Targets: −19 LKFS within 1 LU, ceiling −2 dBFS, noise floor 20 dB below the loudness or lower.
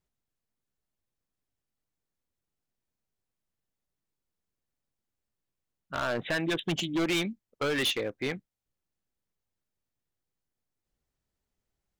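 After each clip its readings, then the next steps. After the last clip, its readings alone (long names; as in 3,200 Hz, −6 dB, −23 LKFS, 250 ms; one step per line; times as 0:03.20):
share of clipped samples 1.4%; peaks flattened at −24.5 dBFS; integrated loudness −30.5 LKFS; sample peak −24.5 dBFS; target loudness −19.0 LKFS
→ clipped peaks rebuilt −24.5 dBFS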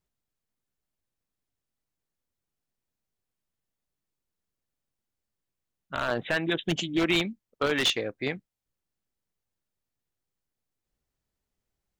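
share of clipped samples 0.0%; integrated loudness −28.0 LKFS; sample peak −15.5 dBFS; target loudness −19.0 LKFS
→ level +9 dB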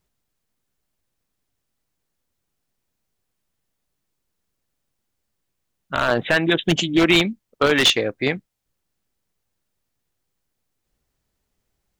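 integrated loudness −19.0 LKFS; sample peak −6.5 dBFS; background noise floor −78 dBFS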